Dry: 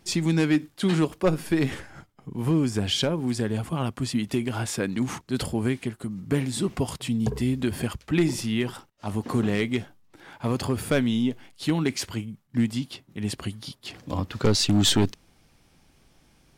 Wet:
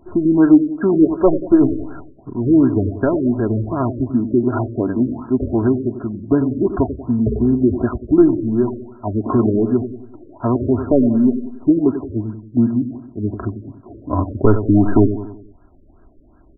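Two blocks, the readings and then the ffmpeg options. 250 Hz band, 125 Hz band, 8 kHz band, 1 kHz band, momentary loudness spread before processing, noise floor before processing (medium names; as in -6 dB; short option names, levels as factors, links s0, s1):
+10.5 dB, +5.5 dB, under -40 dB, +8.0 dB, 10 LU, -61 dBFS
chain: -filter_complex "[0:a]aecho=1:1:3:0.73,asplit=2[s0][s1];[s1]adelay=93,lowpass=f=2000:p=1,volume=0.316,asplit=2[s2][s3];[s3]adelay=93,lowpass=f=2000:p=1,volume=0.49,asplit=2[s4][s5];[s5]adelay=93,lowpass=f=2000:p=1,volume=0.49,asplit=2[s6][s7];[s7]adelay=93,lowpass=f=2000:p=1,volume=0.49,asplit=2[s8][s9];[s9]adelay=93,lowpass=f=2000:p=1,volume=0.49[s10];[s0][s2][s4][s6][s8][s10]amix=inputs=6:normalize=0,afftfilt=real='re*lt(b*sr/1024,580*pow(1700/580,0.5+0.5*sin(2*PI*2.7*pts/sr)))':imag='im*lt(b*sr/1024,580*pow(1700/580,0.5+0.5*sin(2*PI*2.7*pts/sr)))':win_size=1024:overlap=0.75,volume=2.51"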